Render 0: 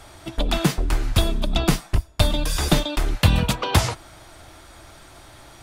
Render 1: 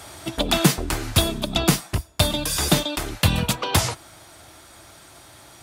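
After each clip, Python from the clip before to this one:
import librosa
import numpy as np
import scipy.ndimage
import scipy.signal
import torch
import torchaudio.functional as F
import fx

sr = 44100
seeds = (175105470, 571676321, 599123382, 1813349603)

y = scipy.signal.sosfilt(scipy.signal.butter(2, 80.0, 'highpass', fs=sr, output='sos'), x)
y = fx.high_shelf(y, sr, hz=5500.0, db=7.5)
y = fx.rider(y, sr, range_db=5, speed_s=2.0)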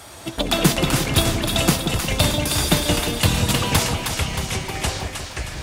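y = fx.echo_pitch(x, sr, ms=118, semitones=-4, count=3, db_per_echo=-6.0)
y = fx.dmg_crackle(y, sr, seeds[0], per_s=120.0, level_db=-41.0)
y = fx.echo_split(y, sr, split_hz=870.0, low_ms=178, high_ms=313, feedback_pct=52, wet_db=-5.5)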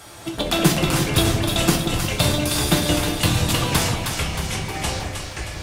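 y = fx.room_shoebox(x, sr, seeds[1], volume_m3=34.0, walls='mixed', distance_m=0.45)
y = y * 10.0 ** (-2.5 / 20.0)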